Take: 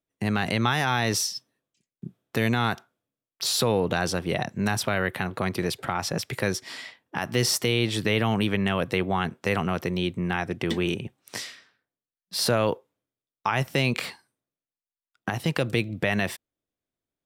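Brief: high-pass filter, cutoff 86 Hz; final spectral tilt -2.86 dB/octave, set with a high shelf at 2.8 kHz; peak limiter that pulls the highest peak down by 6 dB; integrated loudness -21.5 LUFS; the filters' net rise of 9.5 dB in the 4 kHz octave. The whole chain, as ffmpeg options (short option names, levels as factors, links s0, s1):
-af "highpass=86,highshelf=f=2800:g=5.5,equalizer=f=4000:t=o:g=7.5,volume=1.26,alimiter=limit=0.422:level=0:latency=1"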